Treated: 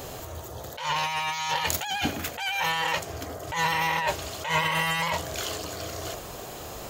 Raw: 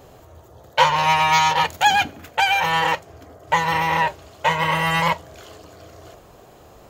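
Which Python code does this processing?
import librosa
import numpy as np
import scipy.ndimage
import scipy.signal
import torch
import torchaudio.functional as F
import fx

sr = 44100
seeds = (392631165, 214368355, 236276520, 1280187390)

y = fx.high_shelf(x, sr, hz=2400.0, db=10.0)
y = fx.over_compress(y, sr, threshold_db=-25.0, ratio=-1.0)
y = fx.attack_slew(y, sr, db_per_s=150.0)
y = y * 10.0 ** (-2.0 / 20.0)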